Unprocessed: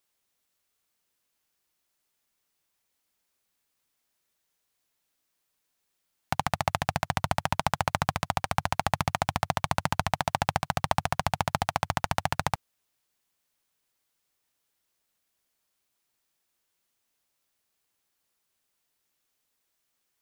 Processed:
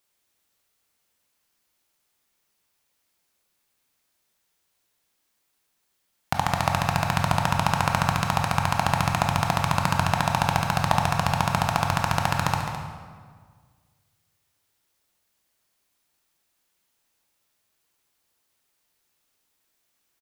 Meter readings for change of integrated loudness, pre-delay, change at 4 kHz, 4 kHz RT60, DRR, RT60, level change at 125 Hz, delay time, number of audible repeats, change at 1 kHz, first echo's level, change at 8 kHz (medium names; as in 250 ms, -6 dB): +5.5 dB, 18 ms, +4.5 dB, 1.2 s, 1.5 dB, 1.7 s, +7.5 dB, 211 ms, 1, +5.0 dB, -10.5 dB, +4.5 dB